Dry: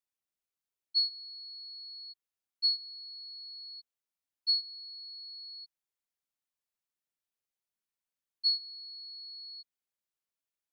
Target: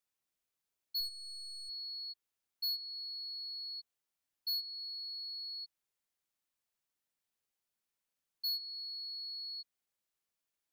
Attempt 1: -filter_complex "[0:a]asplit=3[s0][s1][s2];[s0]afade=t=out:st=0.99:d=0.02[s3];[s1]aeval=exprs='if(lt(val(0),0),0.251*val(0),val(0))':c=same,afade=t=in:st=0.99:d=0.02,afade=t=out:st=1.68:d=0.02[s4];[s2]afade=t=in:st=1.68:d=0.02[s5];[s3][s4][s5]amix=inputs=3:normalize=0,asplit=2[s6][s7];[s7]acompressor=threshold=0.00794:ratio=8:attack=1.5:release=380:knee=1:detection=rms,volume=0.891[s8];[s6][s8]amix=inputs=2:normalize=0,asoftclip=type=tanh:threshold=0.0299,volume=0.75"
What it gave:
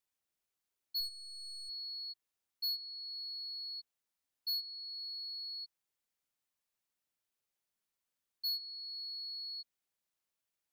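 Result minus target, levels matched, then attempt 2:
compression: peak gain reduction +6.5 dB
-filter_complex "[0:a]asplit=3[s0][s1][s2];[s0]afade=t=out:st=0.99:d=0.02[s3];[s1]aeval=exprs='if(lt(val(0),0),0.251*val(0),val(0))':c=same,afade=t=in:st=0.99:d=0.02,afade=t=out:st=1.68:d=0.02[s4];[s2]afade=t=in:st=1.68:d=0.02[s5];[s3][s4][s5]amix=inputs=3:normalize=0,asplit=2[s6][s7];[s7]acompressor=threshold=0.0188:ratio=8:attack=1.5:release=380:knee=1:detection=rms,volume=0.891[s8];[s6][s8]amix=inputs=2:normalize=0,asoftclip=type=tanh:threshold=0.0299,volume=0.75"

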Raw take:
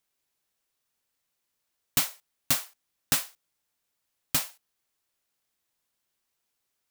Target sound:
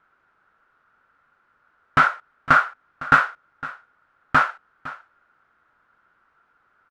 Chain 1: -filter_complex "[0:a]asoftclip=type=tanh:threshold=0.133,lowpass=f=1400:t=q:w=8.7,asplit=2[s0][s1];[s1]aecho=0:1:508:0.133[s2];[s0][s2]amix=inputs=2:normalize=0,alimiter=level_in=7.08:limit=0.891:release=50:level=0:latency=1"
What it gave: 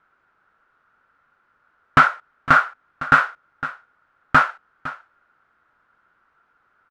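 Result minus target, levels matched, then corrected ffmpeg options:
saturation: distortion -7 dB
-filter_complex "[0:a]asoftclip=type=tanh:threshold=0.0531,lowpass=f=1400:t=q:w=8.7,asplit=2[s0][s1];[s1]aecho=0:1:508:0.133[s2];[s0][s2]amix=inputs=2:normalize=0,alimiter=level_in=7.08:limit=0.891:release=50:level=0:latency=1"

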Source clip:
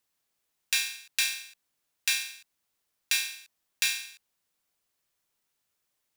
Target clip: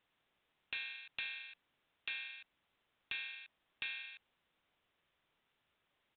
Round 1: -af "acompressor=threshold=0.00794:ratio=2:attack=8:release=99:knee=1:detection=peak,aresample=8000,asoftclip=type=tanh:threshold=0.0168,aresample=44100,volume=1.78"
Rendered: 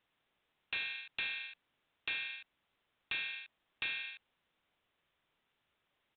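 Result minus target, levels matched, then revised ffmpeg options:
compression: peak gain reduction -6 dB
-af "acompressor=threshold=0.002:ratio=2:attack=8:release=99:knee=1:detection=peak,aresample=8000,asoftclip=type=tanh:threshold=0.0168,aresample=44100,volume=1.78"

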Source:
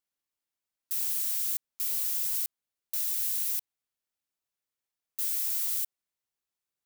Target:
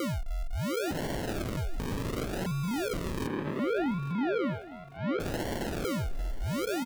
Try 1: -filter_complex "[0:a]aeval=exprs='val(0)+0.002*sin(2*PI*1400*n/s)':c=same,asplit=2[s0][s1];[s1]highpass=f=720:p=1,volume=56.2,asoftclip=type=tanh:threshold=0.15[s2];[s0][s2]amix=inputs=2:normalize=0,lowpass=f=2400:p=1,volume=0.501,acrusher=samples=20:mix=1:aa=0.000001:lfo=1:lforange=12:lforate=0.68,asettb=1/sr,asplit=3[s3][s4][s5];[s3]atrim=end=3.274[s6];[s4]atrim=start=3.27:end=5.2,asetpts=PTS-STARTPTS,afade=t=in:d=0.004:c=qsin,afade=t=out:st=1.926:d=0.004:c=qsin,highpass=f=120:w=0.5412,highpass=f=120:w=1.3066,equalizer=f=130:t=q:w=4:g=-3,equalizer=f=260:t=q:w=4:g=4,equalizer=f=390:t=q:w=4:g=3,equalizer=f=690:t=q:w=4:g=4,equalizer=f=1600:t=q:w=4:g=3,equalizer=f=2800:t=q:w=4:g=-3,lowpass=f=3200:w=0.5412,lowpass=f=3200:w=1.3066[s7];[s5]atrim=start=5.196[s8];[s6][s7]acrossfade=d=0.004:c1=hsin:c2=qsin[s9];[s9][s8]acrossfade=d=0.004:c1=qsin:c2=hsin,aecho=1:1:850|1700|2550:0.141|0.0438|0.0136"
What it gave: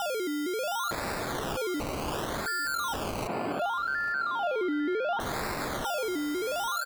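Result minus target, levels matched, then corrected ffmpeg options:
decimation with a swept rate: distortion -4 dB
-filter_complex "[0:a]aeval=exprs='val(0)+0.002*sin(2*PI*1400*n/s)':c=same,asplit=2[s0][s1];[s1]highpass=f=720:p=1,volume=56.2,asoftclip=type=tanh:threshold=0.15[s2];[s0][s2]amix=inputs=2:normalize=0,lowpass=f=2400:p=1,volume=0.501,acrusher=samples=50:mix=1:aa=0.000001:lfo=1:lforange=30:lforate=0.68,asettb=1/sr,asplit=3[s3][s4][s5];[s3]atrim=end=3.274[s6];[s4]atrim=start=3.27:end=5.2,asetpts=PTS-STARTPTS,afade=t=in:d=0.004:c=qsin,afade=t=out:st=1.926:d=0.004:c=qsin,highpass=f=120:w=0.5412,highpass=f=120:w=1.3066,equalizer=f=130:t=q:w=4:g=-3,equalizer=f=260:t=q:w=4:g=4,equalizer=f=390:t=q:w=4:g=3,equalizer=f=690:t=q:w=4:g=4,equalizer=f=1600:t=q:w=4:g=3,equalizer=f=2800:t=q:w=4:g=-3,lowpass=f=3200:w=0.5412,lowpass=f=3200:w=1.3066[s7];[s5]atrim=start=5.196[s8];[s6][s7]acrossfade=d=0.004:c1=hsin:c2=qsin[s9];[s9][s8]acrossfade=d=0.004:c1=qsin:c2=hsin,aecho=1:1:850|1700|2550:0.141|0.0438|0.0136"

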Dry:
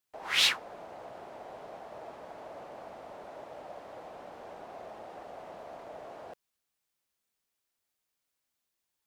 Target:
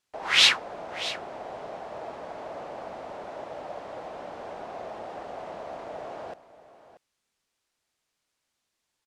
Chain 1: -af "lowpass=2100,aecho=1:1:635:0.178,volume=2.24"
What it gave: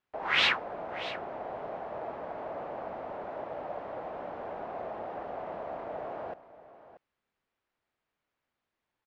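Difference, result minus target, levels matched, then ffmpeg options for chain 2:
8 kHz band -14.0 dB
-af "lowpass=8100,aecho=1:1:635:0.178,volume=2.24"

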